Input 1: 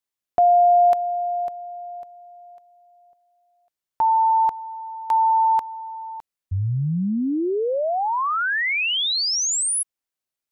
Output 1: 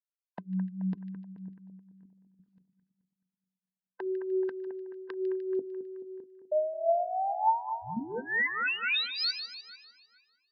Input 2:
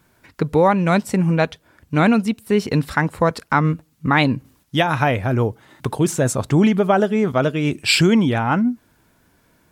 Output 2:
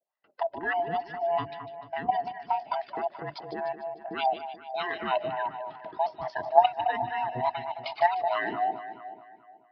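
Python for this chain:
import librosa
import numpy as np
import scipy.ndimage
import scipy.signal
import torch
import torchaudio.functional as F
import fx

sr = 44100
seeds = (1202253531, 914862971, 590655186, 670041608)

p1 = fx.band_swap(x, sr, width_hz=500)
p2 = scipy.signal.sosfilt(scipy.signal.butter(16, 5100.0, 'lowpass', fs=sr, output='sos'), p1)
p3 = fx.dereverb_blind(p2, sr, rt60_s=0.5)
p4 = scipy.signal.sosfilt(scipy.signal.butter(2, 190.0, 'highpass', fs=sr, output='sos'), p3)
p5 = fx.gate_hold(p4, sr, open_db=-46.0, close_db=-55.0, hold_ms=126.0, range_db=-19, attack_ms=0.92, release_ms=24.0)
p6 = fx.hum_notches(p5, sr, base_hz=50, count=8)
p7 = fx.level_steps(p6, sr, step_db=13)
p8 = fx.harmonic_tremolo(p7, sr, hz=3.4, depth_pct=100, crossover_hz=510.0)
p9 = p8 + fx.echo_split(p8, sr, split_hz=2300.0, low_ms=215, high_ms=150, feedback_pct=52, wet_db=-9.5, dry=0)
p10 = fx.bell_lfo(p9, sr, hz=2.3, low_hz=550.0, high_hz=1800.0, db=9)
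y = F.gain(torch.from_numpy(p10), -2.5).numpy()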